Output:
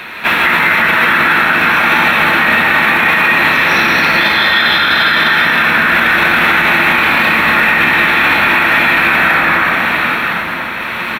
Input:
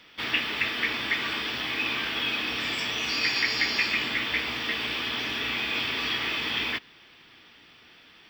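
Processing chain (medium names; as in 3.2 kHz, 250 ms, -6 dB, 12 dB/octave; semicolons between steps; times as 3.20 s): random-step tremolo, depth 55%; speed mistake 45 rpm record played at 33 rpm; reverse; compression, threshold -39 dBFS, peak gain reduction 17 dB; reverse; bass shelf 180 Hz -11 dB; on a send: delay 989 ms -17 dB; on the sum: plate-style reverb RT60 3.1 s, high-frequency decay 0.35×, pre-delay 115 ms, DRR -4.5 dB; loudness maximiser +34 dB; trim -1 dB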